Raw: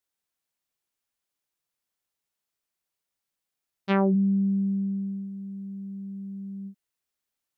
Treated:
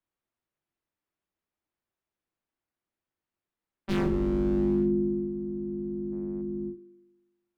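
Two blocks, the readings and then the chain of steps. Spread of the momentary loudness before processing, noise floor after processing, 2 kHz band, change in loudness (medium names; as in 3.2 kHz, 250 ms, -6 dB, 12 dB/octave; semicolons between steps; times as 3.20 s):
16 LU, under -85 dBFS, -5.0 dB, -1.5 dB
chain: octave divider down 2 oct, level +2 dB; time-frequency box 6.13–6.42 s, 650–3000 Hz +12 dB; tone controls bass -4 dB, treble -10 dB; in parallel at 0 dB: peak limiter -19 dBFS, peak gain reduction 9 dB; on the sum: treble shelf 3.2 kHz -9.5 dB; wavefolder -17 dBFS; spring tank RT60 1.2 s, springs 40 ms, chirp 50 ms, DRR 15.5 dB; frequency shift -400 Hz; trim -4 dB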